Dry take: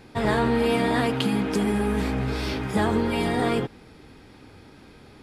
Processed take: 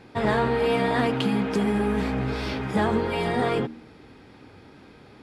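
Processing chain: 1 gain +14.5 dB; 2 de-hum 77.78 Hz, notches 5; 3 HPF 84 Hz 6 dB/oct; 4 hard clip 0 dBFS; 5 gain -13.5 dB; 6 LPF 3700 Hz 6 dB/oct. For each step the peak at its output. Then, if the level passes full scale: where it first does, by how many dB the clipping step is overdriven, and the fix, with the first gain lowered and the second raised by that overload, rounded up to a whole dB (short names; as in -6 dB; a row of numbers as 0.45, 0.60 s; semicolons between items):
+5.5, +5.0, +4.5, 0.0, -13.5, -13.5 dBFS; step 1, 4.5 dB; step 1 +9.5 dB, step 5 -8.5 dB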